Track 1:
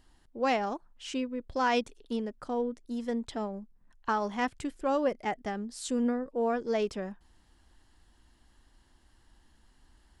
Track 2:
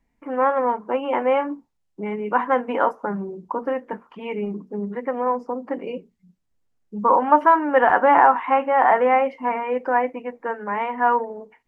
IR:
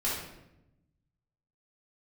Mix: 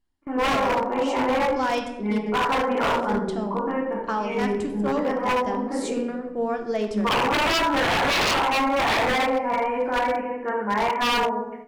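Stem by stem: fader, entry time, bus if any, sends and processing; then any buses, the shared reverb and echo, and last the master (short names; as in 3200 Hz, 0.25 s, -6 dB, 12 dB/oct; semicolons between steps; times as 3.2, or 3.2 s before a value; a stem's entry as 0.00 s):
-1.0 dB, 0.00 s, send -9 dB, dry
-2.5 dB, 0.00 s, send -4.5 dB, de-hum 61.12 Hz, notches 12; auto duck -20 dB, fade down 0.65 s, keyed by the first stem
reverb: on, RT60 0.90 s, pre-delay 3 ms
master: gate with hold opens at -30 dBFS; low shelf 310 Hz +2 dB; wavefolder -16.5 dBFS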